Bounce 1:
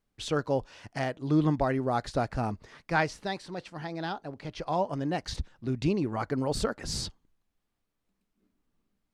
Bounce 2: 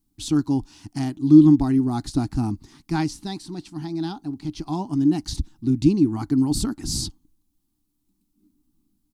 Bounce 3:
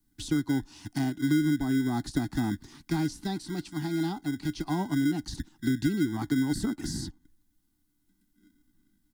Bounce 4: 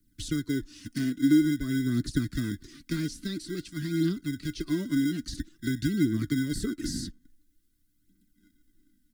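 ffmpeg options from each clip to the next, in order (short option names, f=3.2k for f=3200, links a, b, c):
-af "firequalizer=gain_entry='entry(210,0);entry(300,9);entry(510,-29);entry(790,-8);entry(1700,-16);entry(4000,-3);entry(11000,6)':delay=0.05:min_phase=1,volume=7.5dB"
-filter_complex "[0:a]acrossover=split=360|4300[a][b][c];[a]acrusher=samples=25:mix=1:aa=0.000001[d];[b]alimiter=limit=-23.5dB:level=0:latency=1[e];[d][e][c]amix=inputs=3:normalize=0,acrossover=split=150|1000[f][g][h];[f]acompressor=threshold=-40dB:ratio=4[i];[g]acompressor=threshold=-25dB:ratio=4[j];[h]acompressor=threshold=-40dB:ratio=4[k];[i][j][k]amix=inputs=3:normalize=0"
-af "aphaser=in_gain=1:out_gain=1:delay=4.7:decay=0.45:speed=0.49:type=triangular,asuperstop=centerf=820:order=4:qfactor=0.96"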